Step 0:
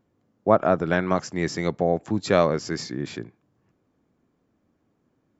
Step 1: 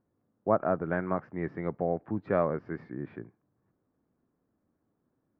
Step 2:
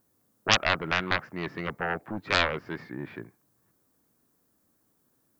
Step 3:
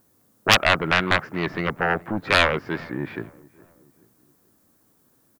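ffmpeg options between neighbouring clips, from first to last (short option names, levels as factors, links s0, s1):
-af "lowpass=f=1800:w=0.5412,lowpass=f=1800:w=1.3066,volume=0.422"
-af "aeval=exprs='0.316*(cos(1*acos(clip(val(0)/0.316,-1,1)))-cos(1*PI/2))+0.141*(cos(7*acos(clip(val(0)/0.316,-1,1)))-cos(7*PI/2))':c=same,crystalizer=i=9:c=0,volume=0.531"
-filter_complex "[0:a]asoftclip=type=tanh:threshold=0.316,asplit=2[s0][s1];[s1]adelay=424,lowpass=f=1300:p=1,volume=0.0794,asplit=2[s2][s3];[s3]adelay=424,lowpass=f=1300:p=1,volume=0.48,asplit=2[s4][s5];[s5]adelay=424,lowpass=f=1300:p=1,volume=0.48[s6];[s0][s2][s4][s6]amix=inputs=4:normalize=0,volume=2.51"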